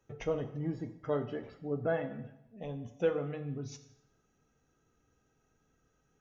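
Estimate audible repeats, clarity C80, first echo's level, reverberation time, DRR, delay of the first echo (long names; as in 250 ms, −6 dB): no echo audible, 14.5 dB, no echo audible, 0.85 s, 8.5 dB, no echo audible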